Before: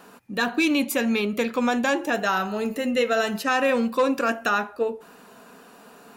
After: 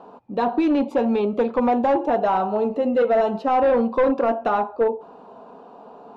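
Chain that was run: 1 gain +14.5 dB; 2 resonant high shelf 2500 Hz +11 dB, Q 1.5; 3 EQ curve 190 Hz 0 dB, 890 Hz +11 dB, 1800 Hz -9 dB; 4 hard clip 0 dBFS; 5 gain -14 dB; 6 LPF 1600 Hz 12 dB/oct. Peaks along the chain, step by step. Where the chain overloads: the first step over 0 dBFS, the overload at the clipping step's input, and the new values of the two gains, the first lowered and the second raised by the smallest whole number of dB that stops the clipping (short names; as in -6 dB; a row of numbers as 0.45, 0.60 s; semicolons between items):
+2.5, +10.0, +10.0, 0.0, -14.0, -13.5 dBFS; step 1, 10.0 dB; step 1 +4.5 dB, step 5 -4 dB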